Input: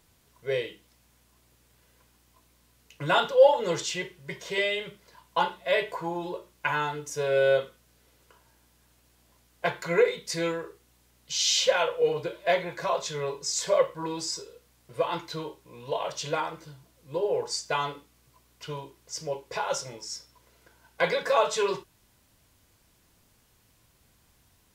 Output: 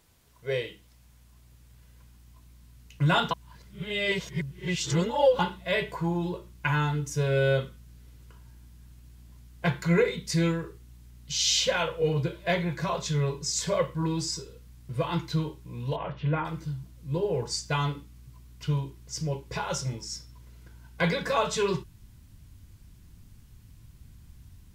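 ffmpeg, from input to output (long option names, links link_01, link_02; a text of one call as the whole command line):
ffmpeg -i in.wav -filter_complex "[0:a]asplit=3[link_01][link_02][link_03];[link_01]afade=type=out:start_time=15.95:duration=0.02[link_04];[link_02]lowpass=frequency=2400:width=0.5412,lowpass=frequency=2400:width=1.3066,afade=type=in:start_time=15.95:duration=0.02,afade=type=out:start_time=16.44:duration=0.02[link_05];[link_03]afade=type=in:start_time=16.44:duration=0.02[link_06];[link_04][link_05][link_06]amix=inputs=3:normalize=0,asplit=3[link_07][link_08][link_09];[link_07]atrim=end=3.312[link_10];[link_08]atrim=start=3.308:end=5.392,asetpts=PTS-STARTPTS,areverse[link_11];[link_09]atrim=start=5.388[link_12];[link_10][link_11]acrossfade=duration=0.004:curve1=hsin:curve2=hsin[link_13];[link_13][link_12]acrossfade=duration=0.004:curve1=hsin:curve2=hsin,asubboost=boost=9:cutoff=180" out.wav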